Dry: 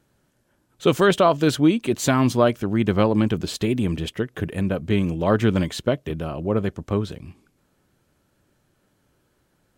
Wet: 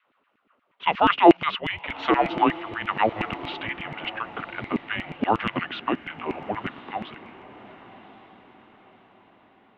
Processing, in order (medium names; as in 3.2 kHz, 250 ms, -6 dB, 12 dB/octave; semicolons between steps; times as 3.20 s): peaking EQ 100 Hz +14.5 dB 0.7 oct; mistuned SSB -320 Hz 200–3500 Hz; LFO high-pass saw down 8.4 Hz 240–2400 Hz; on a send: echo that smears into a reverb 1117 ms, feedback 42%, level -15.5 dB; on the sum: trim +2 dB